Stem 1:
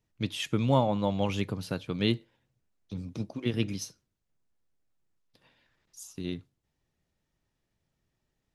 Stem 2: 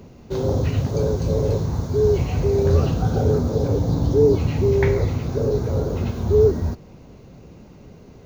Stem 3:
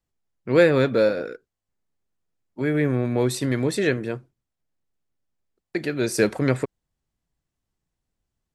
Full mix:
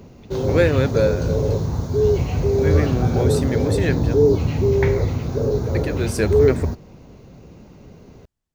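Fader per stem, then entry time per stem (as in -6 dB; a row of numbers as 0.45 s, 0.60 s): -18.5 dB, +0.5 dB, -1.5 dB; 0.00 s, 0.00 s, 0.00 s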